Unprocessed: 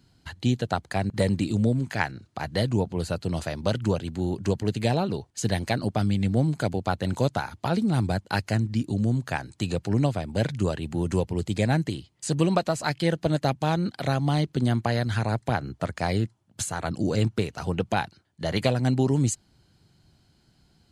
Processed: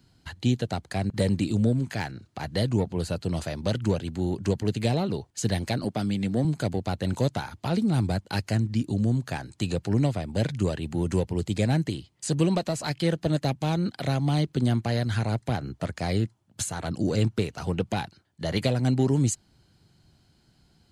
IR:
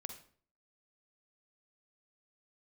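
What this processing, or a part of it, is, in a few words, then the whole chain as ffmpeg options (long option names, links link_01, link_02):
one-band saturation: -filter_complex "[0:a]acrossover=split=540|2500[link_01][link_02][link_03];[link_02]asoftclip=type=tanh:threshold=-31.5dB[link_04];[link_01][link_04][link_03]amix=inputs=3:normalize=0,asettb=1/sr,asplit=3[link_05][link_06][link_07];[link_05]atrim=end=5.844[link_08];[link_06]atrim=start=5.84:end=6.45,asetpts=PTS-STARTPTS,afade=type=in:duration=0.004:curve=qsin,afade=type=out:start_time=0.606:duration=0.004:curve=qsin,highpass=150[link_09];[link_07]atrim=start=6.446[link_10];[link_08][link_09]acrossfade=duration=0.004:curve1=hsin:curve2=qsin[link_11];[link_11][link_10]acrossfade=duration=0.004:curve1=qsin:curve2=hsin"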